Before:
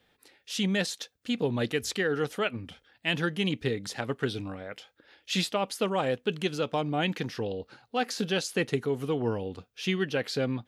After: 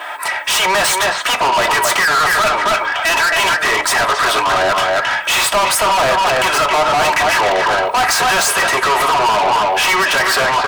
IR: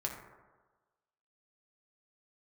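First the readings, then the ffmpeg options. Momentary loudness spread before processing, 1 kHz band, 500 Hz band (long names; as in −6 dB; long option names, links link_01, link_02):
8 LU, +24.5 dB, +12.0 dB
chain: -filter_complex "[0:a]aeval=exprs='val(0)+0.002*(sin(2*PI*60*n/s)+sin(2*PI*2*60*n/s)/2+sin(2*PI*3*60*n/s)/3+sin(2*PI*4*60*n/s)/4+sin(2*PI*5*60*n/s)/5)':channel_layout=same,aecho=1:1:3.1:0.92,asplit=2[link_01][link_02];[link_02]highpass=frequency=720:poles=1,volume=24dB,asoftclip=type=tanh:threshold=-11dB[link_03];[link_01][link_03]amix=inputs=2:normalize=0,lowpass=frequency=3700:poles=1,volume=-6dB,highpass=frequency=620:width=0.5412,highpass=frequency=620:width=1.3066,equalizer=frequency=8400:width=3.5:gain=12.5,asplit=2[link_04][link_05];[link_05]adelay=270,highpass=300,lowpass=3400,asoftclip=type=hard:threshold=-17.5dB,volume=-7dB[link_06];[link_04][link_06]amix=inputs=2:normalize=0,asplit=2[link_07][link_08];[link_08]acompressor=threshold=-32dB:ratio=6,volume=2dB[link_09];[link_07][link_09]amix=inputs=2:normalize=0,equalizer=frequency=1000:width_type=o:width=1:gain=8,equalizer=frequency=4000:width_type=o:width=1:gain=-11,equalizer=frequency=8000:width_type=o:width=1:gain=-7,acontrast=87,alimiter=limit=-8.5dB:level=0:latency=1:release=36,asoftclip=type=tanh:threshold=-23dB,asplit=2[link_10][link_11];[1:a]atrim=start_sample=2205,afade=type=out:start_time=0.16:duration=0.01,atrim=end_sample=7497[link_12];[link_11][link_12]afir=irnorm=-1:irlink=0,volume=-5.5dB[link_13];[link_10][link_13]amix=inputs=2:normalize=0,volume=7.5dB"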